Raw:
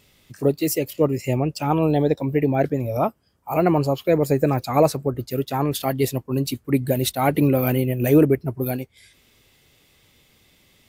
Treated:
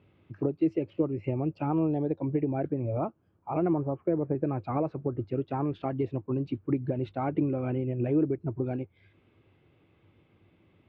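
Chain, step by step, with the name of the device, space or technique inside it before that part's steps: 3.73–4.35 steep low-pass 2100 Hz 48 dB/oct; bass amplifier (compressor 5:1, threshold -24 dBFS, peak gain reduction 12.5 dB; speaker cabinet 71–2300 Hz, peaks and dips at 98 Hz +10 dB, 170 Hz +4 dB, 330 Hz +9 dB, 1900 Hz -9 dB); gain -4.5 dB

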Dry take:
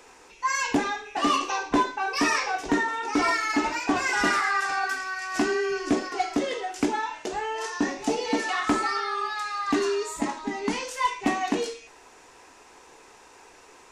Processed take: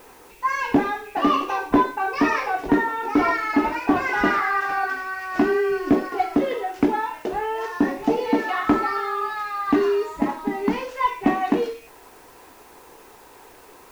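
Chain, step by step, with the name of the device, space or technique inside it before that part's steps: cassette deck with a dirty head (tape spacing loss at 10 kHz 33 dB; wow and flutter 12 cents; white noise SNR 31 dB); gain +7 dB

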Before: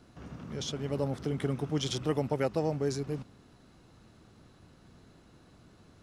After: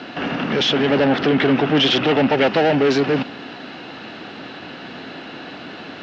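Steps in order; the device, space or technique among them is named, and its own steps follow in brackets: 0.99–2.44 air absorption 61 m; overdrive pedal into a guitar cabinet (overdrive pedal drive 28 dB, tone 5300 Hz, clips at -17 dBFS; speaker cabinet 100–4400 Hz, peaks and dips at 110 Hz -6 dB, 270 Hz +6 dB, 750 Hz +3 dB, 1100 Hz -5 dB, 1700 Hz +4 dB, 2800 Hz +7 dB); gain +7.5 dB

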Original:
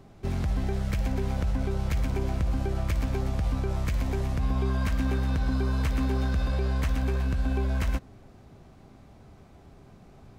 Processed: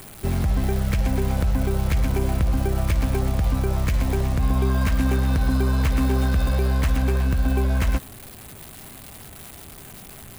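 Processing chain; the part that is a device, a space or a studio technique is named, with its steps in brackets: budget class-D amplifier (switching dead time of 0.096 ms; switching spikes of -29 dBFS); gain +6 dB

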